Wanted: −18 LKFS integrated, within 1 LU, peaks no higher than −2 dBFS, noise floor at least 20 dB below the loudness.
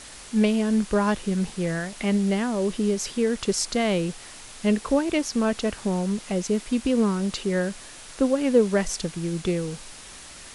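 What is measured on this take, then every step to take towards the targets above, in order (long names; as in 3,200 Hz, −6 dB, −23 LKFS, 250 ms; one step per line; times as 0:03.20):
background noise floor −43 dBFS; target noise floor −45 dBFS; integrated loudness −25.0 LKFS; sample peak −7.5 dBFS; target loudness −18.0 LKFS
→ broadband denoise 6 dB, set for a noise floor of −43 dBFS
level +7 dB
brickwall limiter −2 dBFS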